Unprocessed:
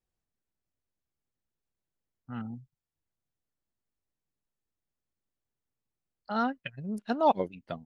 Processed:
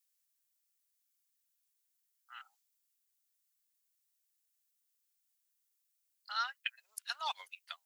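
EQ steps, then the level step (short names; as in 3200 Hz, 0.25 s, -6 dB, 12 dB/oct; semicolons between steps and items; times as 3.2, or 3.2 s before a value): HPF 1100 Hz 24 dB/oct; differentiator; +12.0 dB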